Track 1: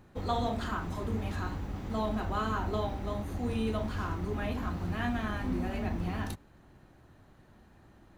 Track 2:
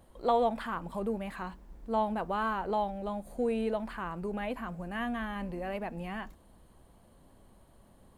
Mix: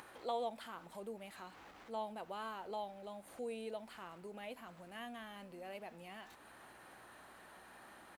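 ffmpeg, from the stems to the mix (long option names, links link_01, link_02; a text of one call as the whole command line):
ffmpeg -i stem1.wav -i stem2.wav -filter_complex "[0:a]asplit=2[link_01][link_02];[link_02]highpass=frequency=720:poles=1,volume=27dB,asoftclip=type=tanh:threshold=-33.5dB[link_03];[link_01][link_03]amix=inputs=2:normalize=0,lowpass=frequency=1700:poles=1,volume=-6dB,volume=-12dB[link_04];[1:a]equalizer=frequency=1400:width=0.82:gain=-10.5,aeval=exprs='val(0)+0.00126*(sin(2*PI*60*n/s)+sin(2*PI*2*60*n/s)/2+sin(2*PI*3*60*n/s)/3+sin(2*PI*4*60*n/s)/4+sin(2*PI*5*60*n/s)/5)':channel_layout=same,adelay=2.2,volume=-2dB,asplit=2[link_05][link_06];[link_06]apad=whole_len=360329[link_07];[link_04][link_07]sidechaincompress=threshold=-48dB:ratio=8:attack=27:release=134[link_08];[link_08][link_05]amix=inputs=2:normalize=0,acompressor=mode=upward:threshold=-41dB:ratio=2.5,highpass=frequency=1100:poles=1" out.wav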